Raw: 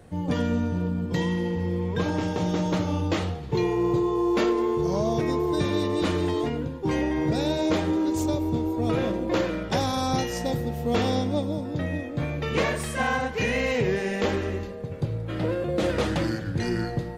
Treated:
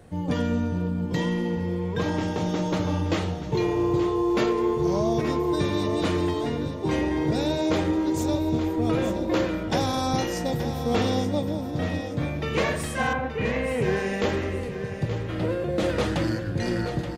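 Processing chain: 13.13–13.82 s: distance through air 450 m; feedback delay 876 ms, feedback 32%, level -10 dB

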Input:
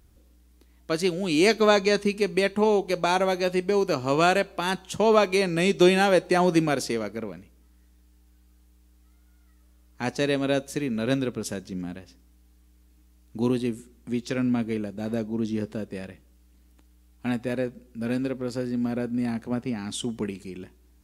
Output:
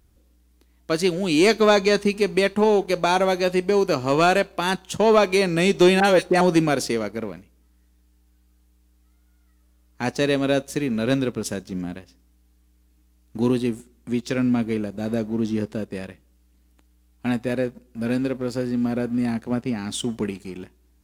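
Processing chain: 6.00–6.41 s: phase dispersion highs, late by 47 ms, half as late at 1.9 kHz; waveshaping leveller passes 1

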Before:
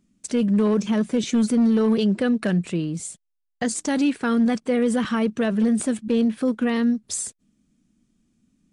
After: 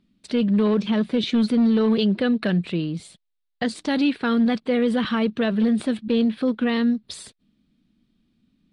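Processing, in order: resonant high shelf 5.2 kHz -9.5 dB, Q 3

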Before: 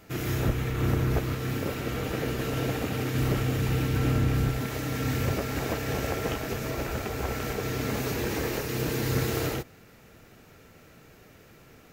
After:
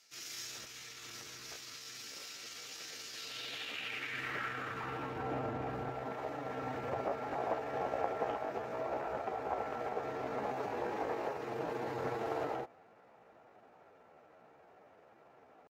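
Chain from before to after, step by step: tempo 0.76×; band-pass sweep 5.4 kHz -> 780 Hz, 3.08–5.26 s; trim +3 dB

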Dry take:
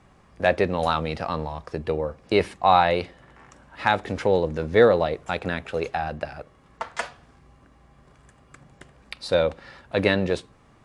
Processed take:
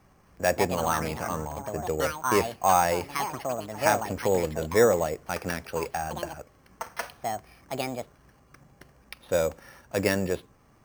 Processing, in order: ever faster or slower copies 262 ms, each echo +5 st, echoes 2, each echo -6 dB; careless resampling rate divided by 6×, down filtered, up hold; trim -4 dB

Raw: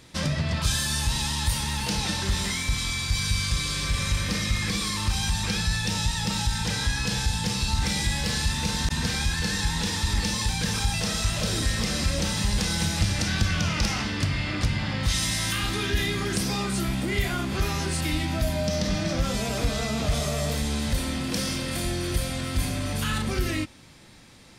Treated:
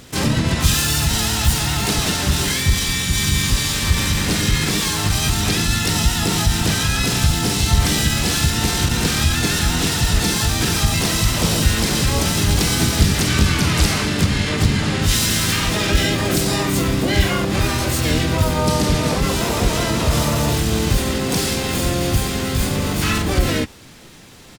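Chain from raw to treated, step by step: harmony voices -4 st -3 dB, +7 st -2 dB, +12 st -5 dB; trim +4.5 dB

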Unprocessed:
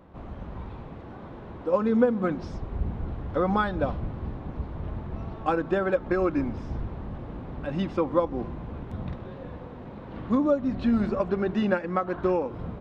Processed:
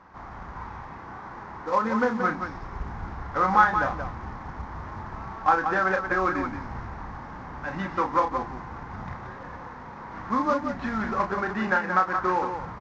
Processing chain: CVSD coder 32 kbps; high-order bell 1.3 kHz +14.5 dB; on a send: loudspeakers at several distances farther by 11 m -6 dB, 61 m -7 dB; on the sum: trim -6 dB

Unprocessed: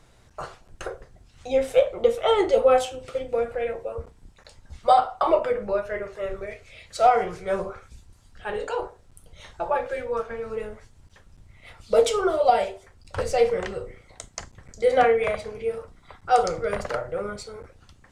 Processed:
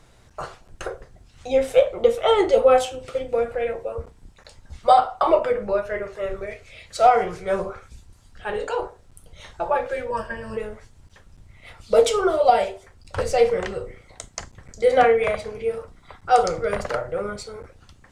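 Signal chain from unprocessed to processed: 10.10–10.57 s: rippled EQ curve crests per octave 1.3, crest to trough 18 dB; trim +2.5 dB

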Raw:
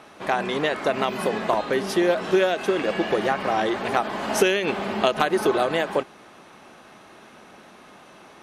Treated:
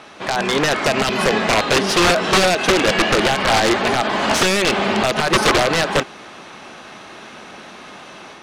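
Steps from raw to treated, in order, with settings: treble shelf 2.3 kHz +9.5 dB; peak limiter -10.5 dBFS, peak gain reduction 10 dB; level rider gain up to 4 dB; integer overflow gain 11.5 dB; distance through air 73 m; trim +4.5 dB

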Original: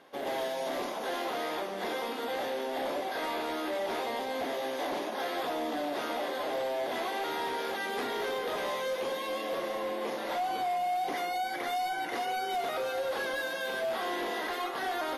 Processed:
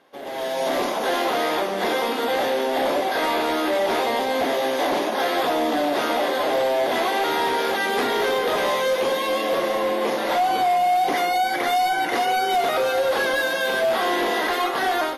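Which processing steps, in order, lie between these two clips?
level rider gain up to 12.5 dB; trim -1 dB

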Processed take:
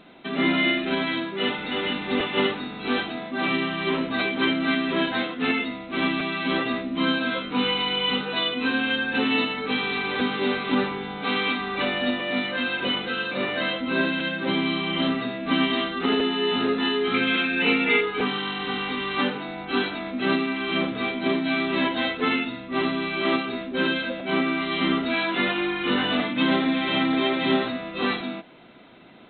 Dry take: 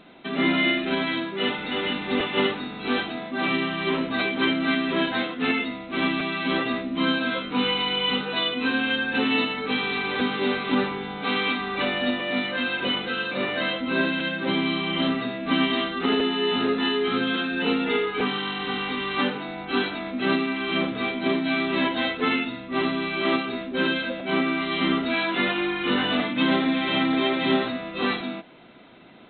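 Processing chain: 17.14–18.01 s: peaking EQ 2.3 kHz +14 dB 0.41 oct

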